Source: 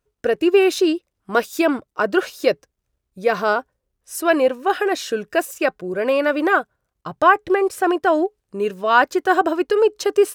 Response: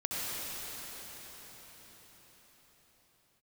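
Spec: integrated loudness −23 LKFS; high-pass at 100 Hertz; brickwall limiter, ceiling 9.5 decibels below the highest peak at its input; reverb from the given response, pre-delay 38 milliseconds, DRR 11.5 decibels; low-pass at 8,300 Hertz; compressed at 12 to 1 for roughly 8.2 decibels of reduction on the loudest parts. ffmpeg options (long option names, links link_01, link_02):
-filter_complex "[0:a]highpass=100,lowpass=8300,acompressor=threshold=-17dB:ratio=12,alimiter=limit=-16.5dB:level=0:latency=1,asplit=2[link_01][link_02];[1:a]atrim=start_sample=2205,adelay=38[link_03];[link_02][link_03]afir=irnorm=-1:irlink=0,volume=-18.5dB[link_04];[link_01][link_04]amix=inputs=2:normalize=0,volume=3.5dB"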